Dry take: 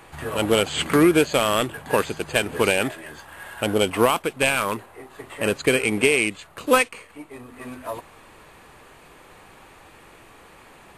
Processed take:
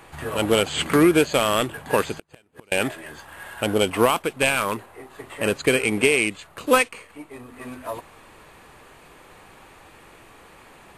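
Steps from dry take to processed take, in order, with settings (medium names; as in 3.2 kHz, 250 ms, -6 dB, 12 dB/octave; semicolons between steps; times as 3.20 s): 2.17–2.72 s: inverted gate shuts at -20 dBFS, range -35 dB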